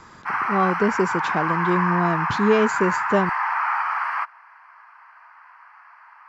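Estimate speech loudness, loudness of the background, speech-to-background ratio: -23.0 LUFS, -24.0 LUFS, 1.0 dB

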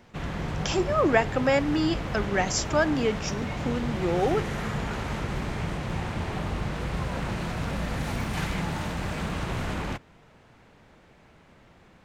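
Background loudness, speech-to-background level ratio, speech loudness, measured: -31.5 LUFS, 5.0 dB, -26.5 LUFS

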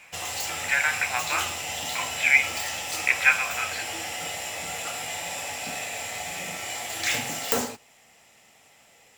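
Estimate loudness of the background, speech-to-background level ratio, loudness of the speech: -29.5 LUFS, 6.0 dB, -23.5 LUFS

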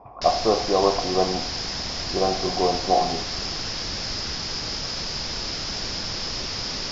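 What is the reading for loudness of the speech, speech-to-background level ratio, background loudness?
-24.0 LUFS, 3.5 dB, -27.5 LUFS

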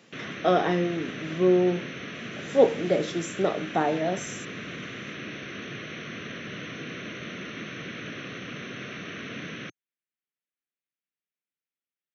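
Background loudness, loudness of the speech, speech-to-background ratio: -37.0 LUFS, -25.5 LUFS, 11.5 dB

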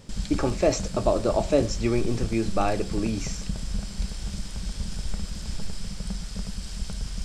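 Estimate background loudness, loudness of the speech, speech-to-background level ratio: -35.0 LUFS, -26.5 LUFS, 8.5 dB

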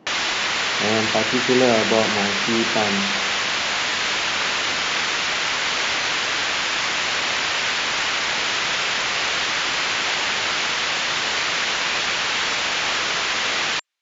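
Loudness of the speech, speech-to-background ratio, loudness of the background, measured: -23.0 LUFS, -3.0 dB, -20.0 LUFS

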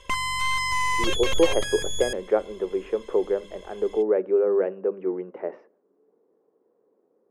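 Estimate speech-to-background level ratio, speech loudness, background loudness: 0.5 dB, -26.0 LUFS, -26.5 LUFS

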